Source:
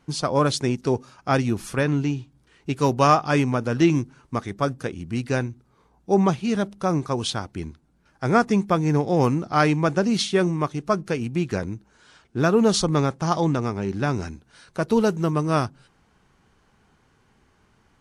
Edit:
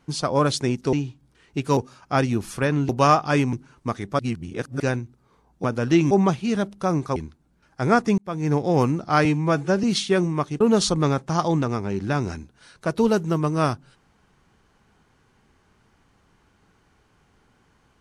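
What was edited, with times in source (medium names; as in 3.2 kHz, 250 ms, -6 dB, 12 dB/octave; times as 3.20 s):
2.05–2.89 s: move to 0.93 s
3.53–4.00 s: move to 6.11 s
4.66–5.27 s: reverse
7.16–7.59 s: delete
8.61–8.98 s: fade in linear
9.68–10.07 s: stretch 1.5×
10.84–12.53 s: delete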